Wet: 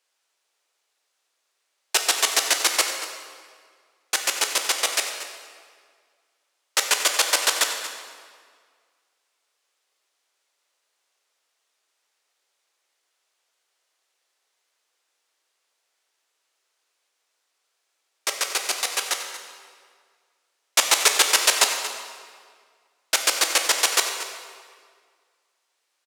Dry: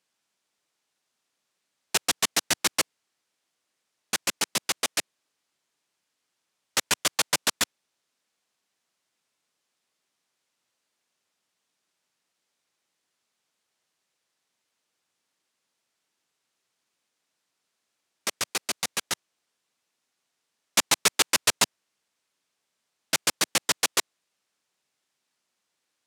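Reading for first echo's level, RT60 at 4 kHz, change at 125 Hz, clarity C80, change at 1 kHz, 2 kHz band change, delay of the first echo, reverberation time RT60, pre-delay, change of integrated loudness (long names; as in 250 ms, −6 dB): −13.5 dB, 1.4 s, below −20 dB, 6.0 dB, +5.0 dB, +5.0 dB, 232 ms, 1.9 s, 11 ms, +4.5 dB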